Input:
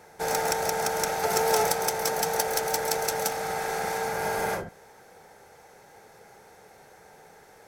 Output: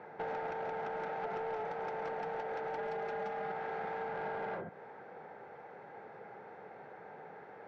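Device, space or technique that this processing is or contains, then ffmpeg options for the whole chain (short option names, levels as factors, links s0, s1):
AM radio: -filter_complex "[0:a]highpass=110,asettb=1/sr,asplit=3[s0][s1][s2];[s0]atrim=end=2.784[s3];[s1]atrim=start=2.78:end=3.52,asetpts=PTS-STARTPTS,afade=t=in:d=0.004:c=qsin,afade=t=out:st=0.736:d=0.004:c=qsin,aecho=1:1:4.9:0.88,atrim=end_sample=32634[s4];[s2]atrim=start=3.516[s5];[s3][s4]acrossfade=d=0.004:c1=hsin:c2=qsin[s6];[s6][s5]acrossfade=d=0.004:c1=qsin:c2=hsin,highpass=110,lowpass=3500,lowpass=1900,acompressor=threshold=0.0126:ratio=5,asoftclip=type=tanh:threshold=0.0211,volume=1.33"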